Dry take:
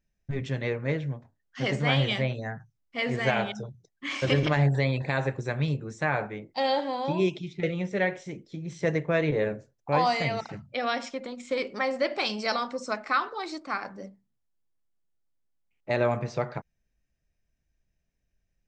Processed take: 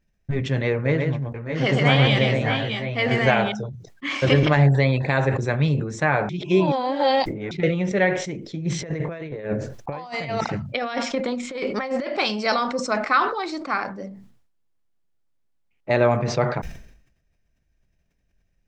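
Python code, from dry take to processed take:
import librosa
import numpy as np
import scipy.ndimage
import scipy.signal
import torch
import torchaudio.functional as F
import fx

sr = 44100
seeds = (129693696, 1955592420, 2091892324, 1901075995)

y = fx.echo_multitap(x, sr, ms=(125, 610, 628), db=(-4.0, -8.5, -8.0), at=(0.73, 3.26))
y = fx.over_compress(y, sr, threshold_db=-32.0, ratio=-0.5, at=(8.65, 12.06), fade=0.02)
y = fx.edit(y, sr, fx.reverse_span(start_s=6.29, length_s=1.22), tone=tone)
y = fx.high_shelf(y, sr, hz=6100.0, db=-9.0)
y = fx.sustainer(y, sr, db_per_s=74.0)
y = F.gain(torch.from_numpy(y), 6.5).numpy()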